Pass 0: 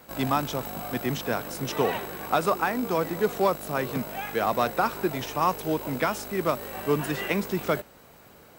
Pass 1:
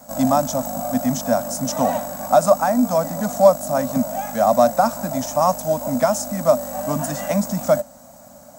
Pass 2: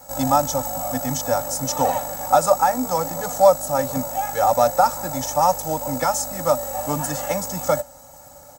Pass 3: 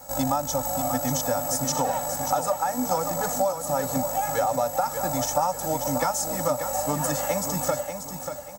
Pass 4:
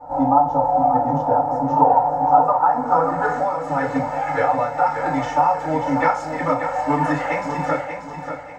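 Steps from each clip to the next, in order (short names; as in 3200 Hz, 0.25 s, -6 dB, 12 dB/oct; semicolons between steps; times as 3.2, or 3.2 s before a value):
EQ curve 140 Hz 0 dB, 260 Hz +10 dB, 390 Hz -30 dB, 580 Hz +13 dB, 970 Hz +1 dB, 1700 Hz -5 dB, 2700 Hz -12 dB, 4100 Hz -3 dB, 6800 Hz +13 dB, 12000 Hz +3 dB; gain +3 dB
comb 2.3 ms, depth 97%; gain -1 dB
compressor 10:1, threshold -21 dBFS, peak gain reduction 13.5 dB; feedback echo 0.587 s, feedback 33%, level -8 dB
low-pass sweep 850 Hz -> 2100 Hz, 2.2–3.64; FDN reverb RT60 0.36 s, low-frequency decay 0.7×, high-frequency decay 0.85×, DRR -9 dB; gain -4.5 dB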